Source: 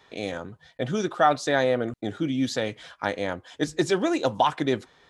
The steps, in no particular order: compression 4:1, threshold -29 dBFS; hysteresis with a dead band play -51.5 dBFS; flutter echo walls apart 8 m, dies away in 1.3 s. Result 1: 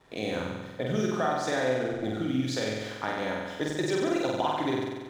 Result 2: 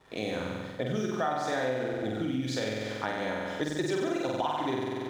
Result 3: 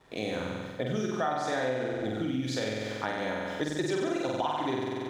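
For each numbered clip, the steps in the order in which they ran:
compression > hysteresis with a dead band > flutter echo; flutter echo > compression > hysteresis with a dead band; hysteresis with a dead band > flutter echo > compression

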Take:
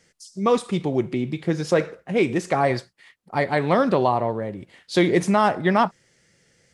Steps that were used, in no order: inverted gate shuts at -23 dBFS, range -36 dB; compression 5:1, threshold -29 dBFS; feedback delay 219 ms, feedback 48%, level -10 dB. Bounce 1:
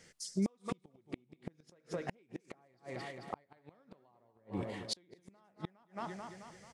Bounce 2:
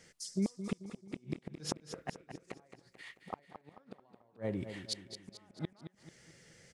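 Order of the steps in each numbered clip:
compression > feedback delay > inverted gate; compression > inverted gate > feedback delay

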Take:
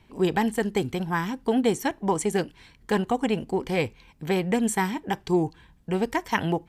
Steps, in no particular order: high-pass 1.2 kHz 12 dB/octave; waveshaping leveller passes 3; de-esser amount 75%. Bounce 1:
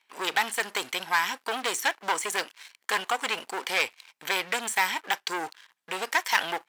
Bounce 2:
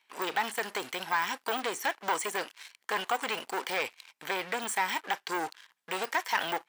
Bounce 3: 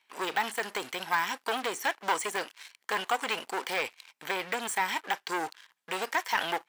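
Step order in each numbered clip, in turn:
de-esser > waveshaping leveller > high-pass; waveshaping leveller > de-esser > high-pass; waveshaping leveller > high-pass > de-esser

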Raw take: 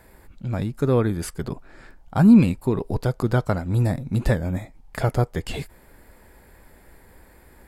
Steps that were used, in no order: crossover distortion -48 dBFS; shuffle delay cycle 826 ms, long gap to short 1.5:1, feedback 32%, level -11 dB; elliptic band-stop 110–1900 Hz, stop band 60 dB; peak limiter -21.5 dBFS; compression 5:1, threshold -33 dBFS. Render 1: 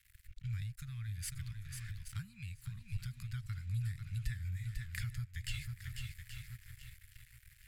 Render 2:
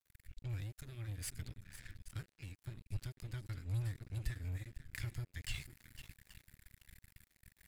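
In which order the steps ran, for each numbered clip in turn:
shuffle delay > crossover distortion > compression > elliptic band-stop > peak limiter; compression > shuffle delay > peak limiter > elliptic band-stop > crossover distortion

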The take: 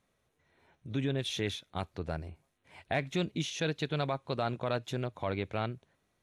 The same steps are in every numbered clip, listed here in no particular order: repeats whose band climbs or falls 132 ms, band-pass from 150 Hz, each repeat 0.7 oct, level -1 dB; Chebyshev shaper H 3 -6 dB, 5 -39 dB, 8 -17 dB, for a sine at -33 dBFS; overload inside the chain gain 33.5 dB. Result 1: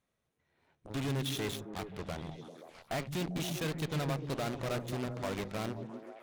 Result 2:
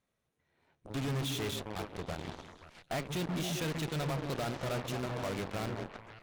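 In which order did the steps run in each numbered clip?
overload inside the chain > Chebyshev shaper > repeats whose band climbs or falls; repeats whose band climbs or falls > overload inside the chain > Chebyshev shaper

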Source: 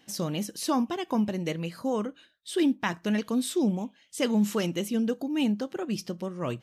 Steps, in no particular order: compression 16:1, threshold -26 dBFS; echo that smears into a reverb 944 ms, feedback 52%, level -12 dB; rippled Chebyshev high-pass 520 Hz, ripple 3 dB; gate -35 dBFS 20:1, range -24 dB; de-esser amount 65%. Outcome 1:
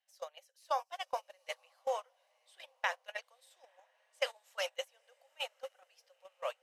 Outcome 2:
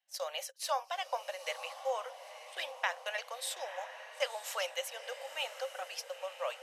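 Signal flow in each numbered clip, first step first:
de-esser > rippled Chebyshev high-pass > compression > echo that smears into a reverb > gate; gate > rippled Chebyshev high-pass > de-esser > echo that smears into a reverb > compression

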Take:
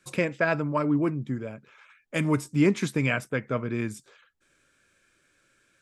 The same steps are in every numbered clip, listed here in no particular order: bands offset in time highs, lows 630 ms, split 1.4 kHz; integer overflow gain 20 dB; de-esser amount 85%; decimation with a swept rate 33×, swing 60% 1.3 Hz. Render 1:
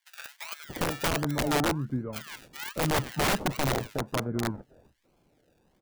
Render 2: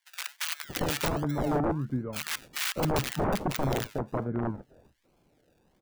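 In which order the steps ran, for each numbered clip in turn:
decimation with a swept rate > de-esser > bands offset in time > integer overflow; decimation with a swept rate > de-esser > integer overflow > bands offset in time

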